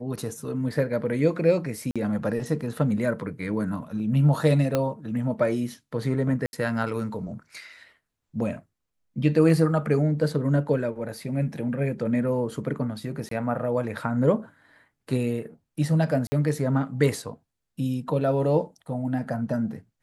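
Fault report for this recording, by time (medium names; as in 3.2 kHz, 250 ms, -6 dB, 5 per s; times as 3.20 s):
1.91–1.96 s: dropout 46 ms
4.75 s: pop -10 dBFS
6.46–6.53 s: dropout 71 ms
13.29–13.31 s: dropout 23 ms
16.27–16.32 s: dropout 50 ms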